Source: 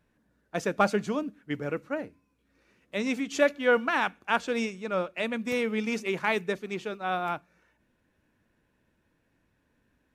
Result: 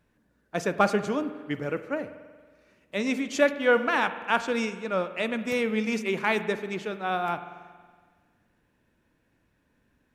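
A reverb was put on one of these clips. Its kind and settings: spring tank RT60 1.6 s, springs 46 ms, chirp 75 ms, DRR 11 dB; trim +1.5 dB

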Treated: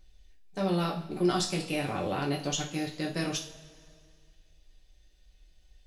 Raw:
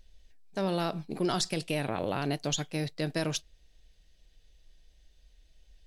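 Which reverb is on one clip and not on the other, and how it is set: two-slope reverb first 0.38 s, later 2.2 s, from -19 dB, DRR -2 dB; trim -3.5 dB

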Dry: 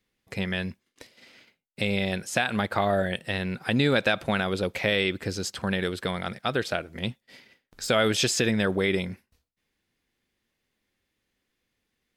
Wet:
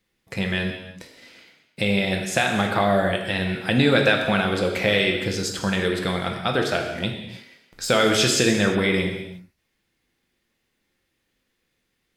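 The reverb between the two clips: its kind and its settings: gated-style reverb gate 380 ms falling, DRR 2 dB; trim +3 dB

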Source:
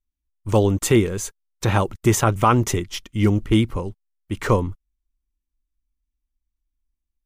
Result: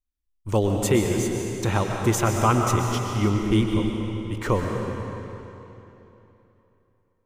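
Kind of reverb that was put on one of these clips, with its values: algorithmic reverb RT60 3.2 s, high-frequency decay 0.9×, pre-delay 85 ms, DRR 1.5 dB; trim -4.5 dB

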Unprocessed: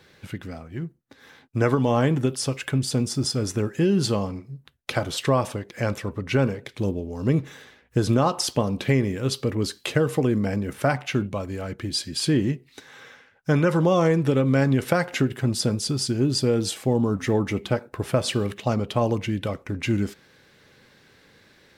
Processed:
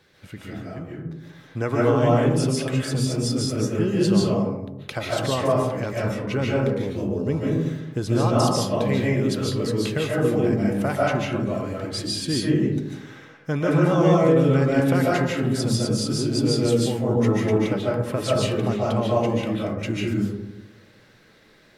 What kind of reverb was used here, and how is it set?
algorithmic reverb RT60 1 s, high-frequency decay 0.3×, pre-delay 105 ms, DRR -5 dB; trim -5 dB

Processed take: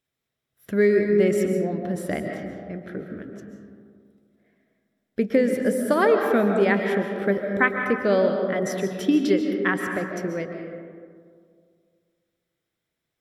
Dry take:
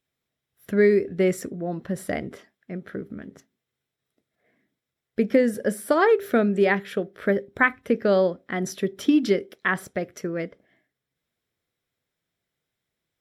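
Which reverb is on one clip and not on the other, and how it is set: algorithmic reverb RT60 2.1 s, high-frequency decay 0.35×, pre-delay 100 ms, DRR 3.5 dB; trim -1 dB

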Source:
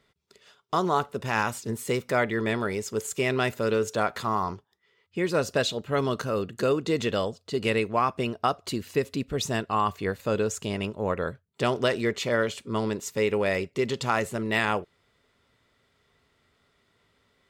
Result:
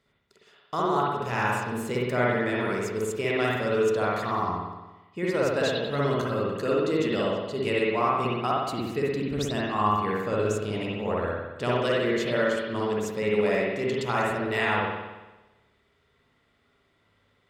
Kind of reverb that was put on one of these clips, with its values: spring tank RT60 1.1 s, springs 57 ms, chirp 40 ms, DRR -5 dB; trim -5.5 dB

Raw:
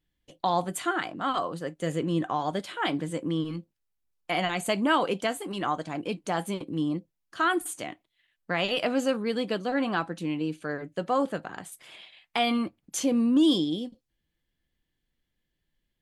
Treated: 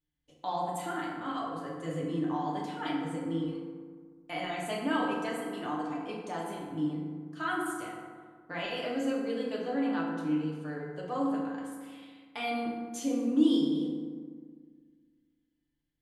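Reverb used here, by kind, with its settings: FDN reverb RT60 1.7 s, low-frequency decay 1.25×, high-frequency decay 0.45×, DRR -4.5 dB; trim -13 dB

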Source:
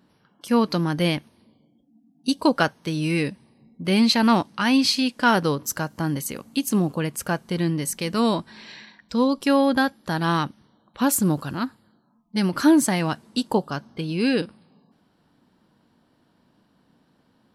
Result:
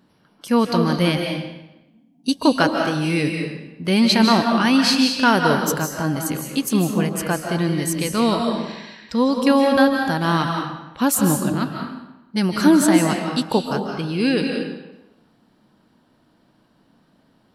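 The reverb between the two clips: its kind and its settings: algorithmic reverb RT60 0.96 s, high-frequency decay 0.85×, pre-delay 115 ms, DRR 2.5 dB; trim +2 dB

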